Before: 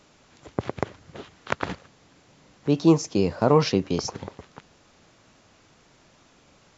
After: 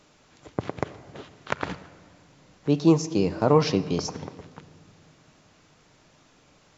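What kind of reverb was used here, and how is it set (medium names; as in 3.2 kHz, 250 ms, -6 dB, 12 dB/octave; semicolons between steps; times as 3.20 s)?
simulated room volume 3100 m³, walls mixed, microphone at 0.47 m; trim -1.5 dB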